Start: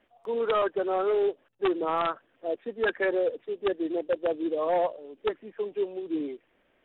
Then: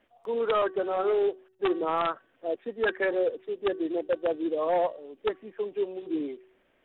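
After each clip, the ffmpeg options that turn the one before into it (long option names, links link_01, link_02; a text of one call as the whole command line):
ffmpeg -i in.wav -af "bandreject=frequency=376.7:width_type=h:width=4,bandreject=frequency=753.4:width_type=h:width=4,bandreject=frequency=1130.1:width_type=h:width=4,bandreject=frequency=1506.8:width_type=h:width=4,bandreject=frequency=1883.5:width_type=h:width=4" out.wav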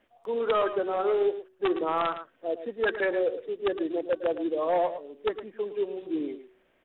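ffmpeg -i in.wav -af "aecho=1:1:111:0.266" out.wav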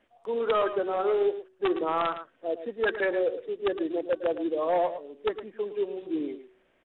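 ffmpeg -i in.wav -af "aresample=22050,aresample=44100" out.wav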